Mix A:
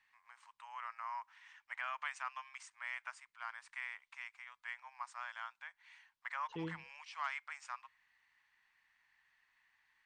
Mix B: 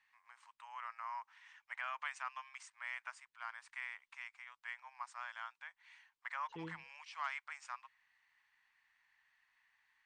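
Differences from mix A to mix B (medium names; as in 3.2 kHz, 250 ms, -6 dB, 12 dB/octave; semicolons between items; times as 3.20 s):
second voice -5.0 dB; reverb: off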